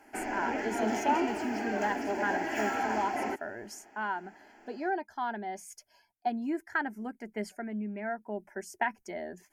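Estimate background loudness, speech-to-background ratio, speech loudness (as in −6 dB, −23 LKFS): −32.5 LKFS, −3.5 dB, −36.0 LKFS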